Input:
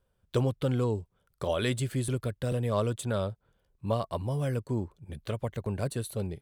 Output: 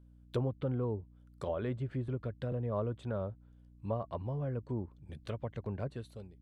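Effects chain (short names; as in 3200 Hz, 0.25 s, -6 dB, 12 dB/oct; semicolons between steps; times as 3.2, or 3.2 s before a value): ending faded out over 0.61 s; hum 60 Hz, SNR 21 dB; treble ducked by the level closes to 1200 Hz, closed at -26 dBFS; gain -6 dB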